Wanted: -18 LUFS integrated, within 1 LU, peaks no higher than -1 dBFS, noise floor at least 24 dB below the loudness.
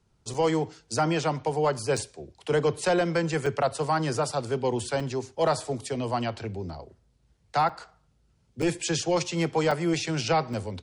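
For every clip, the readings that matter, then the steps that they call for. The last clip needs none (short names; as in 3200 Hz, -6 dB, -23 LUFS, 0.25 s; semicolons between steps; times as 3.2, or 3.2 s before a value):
dropouts 8; longest dropout 4.4 ms; loudness -27.5 LUFS; peak -15.0 dBFS; loudness target -18.0 LUFS
-> interpolate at 0.34/1.97/3.46/5/7.69/8.62/9.71/10.53, 4.4 ms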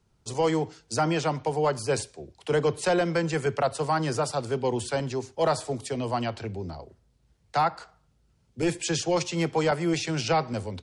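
dropouts 0; loudness -27.5 LUFS; peak -15.0 dBFS; loudness target -18.0 LUFS
-> gain +9.5 dB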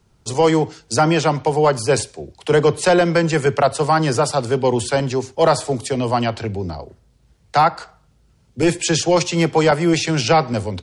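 loudness -18.0 LUFS; peak -5.5 dBFS; noise floor -57 dBFS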